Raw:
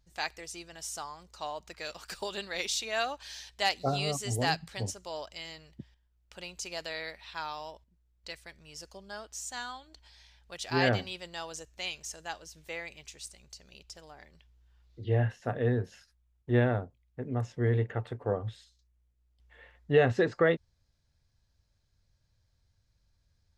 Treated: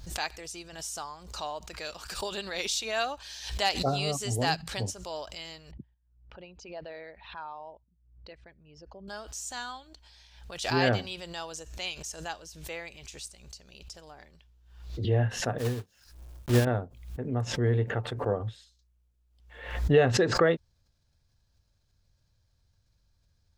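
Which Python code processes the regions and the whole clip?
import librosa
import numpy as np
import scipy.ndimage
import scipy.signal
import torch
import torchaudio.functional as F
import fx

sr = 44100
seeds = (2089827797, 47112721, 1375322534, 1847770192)

y = fx.chain(x, sr, fx.envelope_sharpen(power=1.5),
    fx.highpass(hz=110.0, slope=6),
    fx.spacing_loss(db_at_10k=44), at=(5.71, 9.08))
y = fx.chain(y, sr, fx.block_float(bits=3),
    fx.low_shelf(hz=170.0, db=4.5),
    fx.upward_expand(threshold_db=-33.0, expansion=2.5), at=(15.58, 16.67))
y = fx.peak_eq(y, sr, hz=2000.0, db=-4.0, octaves=0.34)
y = fx.pre_swell(y, sr, db_per_s=77.0)
y = y * librosa.db_to_amplitude(1.5)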